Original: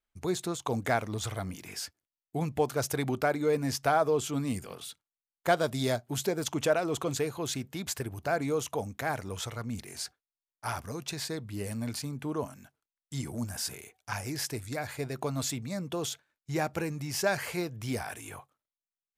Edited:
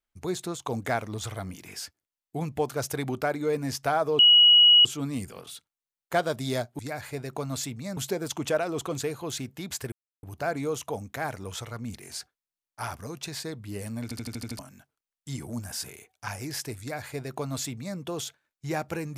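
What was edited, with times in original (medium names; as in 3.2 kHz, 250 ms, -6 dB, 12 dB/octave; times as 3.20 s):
4.19 s: add tone 2.91 kHz -12.5 dBFS 0.66 s
8.08 s: insert silence 0.31 s
11.88 s: stutter in place 0.08 s, 7 plays
14.65–15.83 s: copy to 6.13 s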